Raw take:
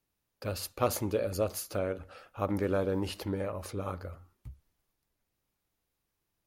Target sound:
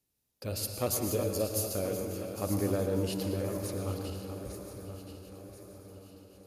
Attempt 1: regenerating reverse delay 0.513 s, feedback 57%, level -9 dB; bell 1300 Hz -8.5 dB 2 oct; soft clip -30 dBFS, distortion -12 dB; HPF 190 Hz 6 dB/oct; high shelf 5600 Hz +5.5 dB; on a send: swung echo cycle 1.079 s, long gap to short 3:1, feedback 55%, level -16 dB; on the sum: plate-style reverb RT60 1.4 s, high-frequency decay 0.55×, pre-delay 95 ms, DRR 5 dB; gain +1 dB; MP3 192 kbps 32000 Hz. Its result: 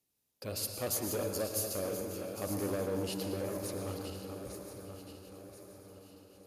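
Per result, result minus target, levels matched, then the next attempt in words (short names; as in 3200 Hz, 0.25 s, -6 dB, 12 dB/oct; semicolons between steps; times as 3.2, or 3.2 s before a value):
soft clip: distortion +15 dB; 125 Hz band -4.0 dB
regenerating reverse delay 0.513 s, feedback 57%, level -9 dB; bell 1300 Hz -8.5 dB 2 oct; soft clip -18.5 dBFS, distortion -27 dB; HPF 190 Hz 6 dB/oct; high shelf 5600 Hz +5.5 dB; on a send: swung echo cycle 1.079 s, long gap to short 3:1, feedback 55%, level -16 dB; on the sum: plate-style reverb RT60 1.4 s, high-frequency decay 0.55×, pre-delay 95 ms, DRR 5 dB; gain +1 dB; MP3 192 kbps 32000 Hz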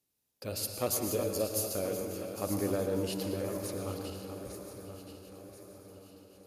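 125 Hz band -4.5 dB
regenerating reverse delay 0.513 s, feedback 57%, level -9 dB; bell 1300 Hz -8.5 dB 2 oct; soft clip -18.5 dBFS, distortion -27 dB; HPF 52 Hz 6 dB/oct; high shelf 5600 Hz +5.5 dB; on a send: swung echo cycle 1.079 s, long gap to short 3:1, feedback 55%, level -16 dB; on the sum: plate-style reverb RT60 1.4 s, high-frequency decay 0.55×, pre-delay 95 ms, DRR 5 dB; gain +1 dB; MP3 192 kbps 32000 Hz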